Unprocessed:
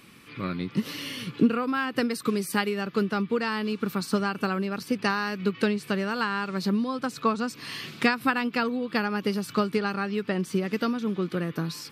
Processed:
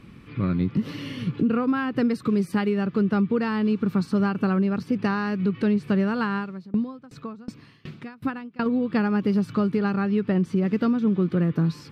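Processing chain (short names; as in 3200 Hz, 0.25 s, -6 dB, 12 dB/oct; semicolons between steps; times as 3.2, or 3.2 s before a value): RIAA curve playback; limiter -14.5 dBFS, peak gain reduction 10 dB; 6.37–8.66 dB-ramp tremolo decaying 2.7 Hz, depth 26 dB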